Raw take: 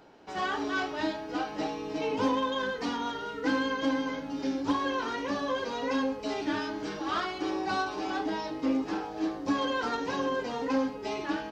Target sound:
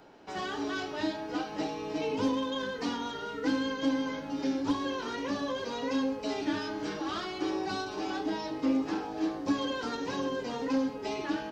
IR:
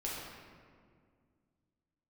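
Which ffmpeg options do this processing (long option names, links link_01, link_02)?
-filter_complex "[0:a]acrossover=split=450|3000[link_01][link_02][link_03];[link_02]acompressor=threshold=-37dB:ratio=6[link_04];[link_01][link_04][link_03]amix=inputs=3:normalize=0,asplit=2[link_05][link_06];[1:a]atrim=start_sample=2205,asetrate=88200,aresample=44100[link_07];[link_06][link_07]afir=irnorm=-1:irlink=0,volume=-12.5dB[link_08];[link_05][link_08]amix=inputs=2:normalize=0"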